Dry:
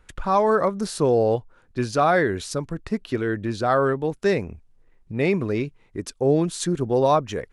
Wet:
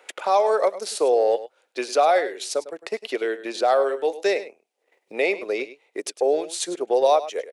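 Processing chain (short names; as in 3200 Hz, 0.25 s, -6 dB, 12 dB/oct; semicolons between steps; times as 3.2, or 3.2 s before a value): HPF 470 Hz 24 dB/oct; band shelf 1300 Hz -8.5 dB 1.1 oct; transient shaper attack +1 dB, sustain -7 dB; 3.78–4.24 doubler 22 ms -8.5 dB; on a send: echo 0.102 s -15.5 dB; on the sum: three-band squash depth 40%; gain +4 dB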